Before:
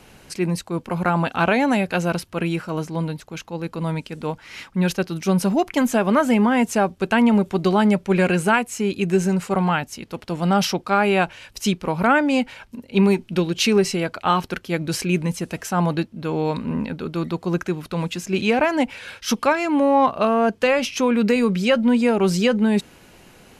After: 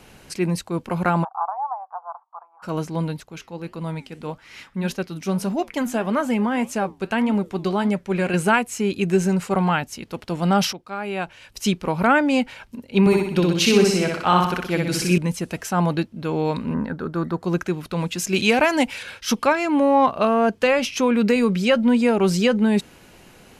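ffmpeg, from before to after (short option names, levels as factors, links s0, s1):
-filter_complex "[0:a]asplit=3[s0][s1][s2];[s0]afade=t=out:st=1.23:d=0.02[s3];[s1]asuperpass=centerf=930:order=8:qfactor=2.1,afade=t=in:st=1.23:d=0.02,afade=t=out:st=2.62:d=0.02[s4];[s2]afade=t=in:st=2.62:d=0.02[s5];[s3][s4][s5]amix=inputs=3:normalize=0,asettb=1/sr,asplit=3[s6][s7][s8];[s6]atrim=end=3.234[s9];[s7]atrim=start=3.23:end=8.34,asetpts=PTS-STARTPTS,afade=t=in:d=0.004:c=qsin,afade=t=out:st=5.106:d=0.004:c=qsin,flanger=delay=4.9:depth=5.5:regen=-83:speed=1.7:shape=triangular[s10];[s8]atrim=start=8.336[s11];[s9][s10]acrossfade=d=0.004:c1=hsin:c2=qsin[s12];[s12][s11]acrossfade=d=0.004:c1=qsin:c2=hsin,asettb=1/sr,asplit=3[s13][s14][s15];[s13]atrim=end=13.004[s16];[s14]atrim=start=13:end=15.18,asetpts=PTS-STARTPTS,afade=t=in:d=0.004:c=qsin,afade=t=out:st=2.176:d=0.004:c=qsin,aecho=1:1:62|124|186|248|310|372|434:0.708|0.354|0.177|0.0885|0.0442|0.0221|0.0111,atrim=end_sample=96138[s17];[s15]atrim=start=15.176[s18];[s16][s17]acrossfade=d=0.004:c1=hsin:c2=qsin[s19];[s19][s18]acrossfade=d=0.004:c1=qsin:c2=hsin,asettb=1/sr,asplit=3[s20][s21][s22];[s20]atrim=end=16.744[s23];[s21]atrim=start=16.74:end=17.43,asetpts=PTS-STARTPTS,afade=t=in:d=0.004:c=qsin,afade=t=out:st=0.686:d=0.004:c=qsin,highshelf=f=2000:t=q:w=3:g=-6.5[s24];[s22]atrim=start=17.426[s25];[s23][s24]acrossfade=d=0.004:c1=hsin:c2=qsin[s26];[s26][s25]acrossfade=d=0.004:c1=qsin:c2=hsin,asettb=1/sr,asplit=3[s27][s28][s29];[s27]atrim=end=18.184[s30];[s28]atrim=start=18.18:end=19.03,asetpts=PTS-STARTPTS,afade=t=in:d=0.004:c=qsin,afade=t=out:st=0.846:d=0.004:c=qsin,highshelf=f=2900:g=10[s31];[s29]atrim=start=19.026[s32];[s30][s31]acrossfade=d=0.004:c1=hsin:c2=qsin[s33];[s33][s32]acrossfade=d=0.004:c1=qsin:c2=hsin,asplit=2[s34][s35];[s34]atrim=end=10.73,asetpts=PTS-STARTPTS,afade=t=out:st=10.726:d=0.004:c=hsin:silence=0.211349[s36];[s35]atrim=start=10.73,asetpts=PTS-STARTPTS,afade=t=in:d=0.96:c=qua:silence=0.211349[s37];[s36][s37]concat=n=2:v=0:a=1"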